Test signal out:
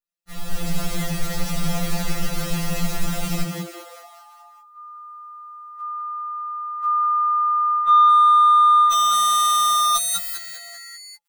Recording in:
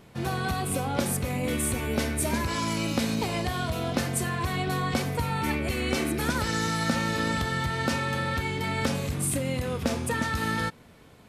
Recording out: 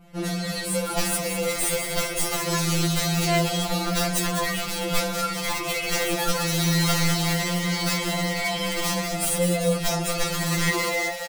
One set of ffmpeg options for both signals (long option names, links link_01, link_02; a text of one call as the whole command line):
ffmpeg -i in.wav -filter_complex "[0:a]asplit=2[link_01][link_02];[link_02]acrusher=bits=4:mix=0:aa=0.5,volume=-4dB[link_03];[link_01][link_03]amix=inputs=2:normalize=0,adynamicequalizer=threshold=0.00562:dfrequency=5500:dqfactor=0.85:tfrequency=5500:tqfactor=0.85:attack=5:release=100:ratio=0.375:range=3:mode=boostabove:tftype=bell,dynaudnorm=framelen=170:gausssize=7:maxgain=13dB,aeval=exprs='(mod(2.24*val(0)+1,2)-1)/2.24':channel_layout=same,lowshelf=frequency=81:gain=12,asplit=7[link_04][link_05][link_06][link_07][link_08][link_09][link_10];[link_05]adelay=198,afreqshift=140,volume=-8dB[link_11];[link_06]adelay=396,afreqshift=280,volume=-13.4dB[link_12];[link_07]adelay=594,afreqshift=420,volume=-18.7dB[link_13];[link_08]adelay=792,afreqshift=560,volume=-24.1dB[link_14];[link_09]adelay=990,afreqshift=700,volume=-29.4dB[link_15];[link_10]adelay=1188,afreqshift=840,volume=-34.8dB[link_16];[link_04][link_11][link_12][link_13][link_14][link_15][link_16]amix=inputs=7:normalize=0,areverse,acompressor=threshold=-19dB:ratio=12,areverse,aecho=1:1:4.3:0.44,afftfilt=real='re*2.83*eq(mod(b,8),0)':imag='im*2.83*eq(mod(b,8),0)':win_size=2048:overlap=0.75,volume=1.5dB" out.wav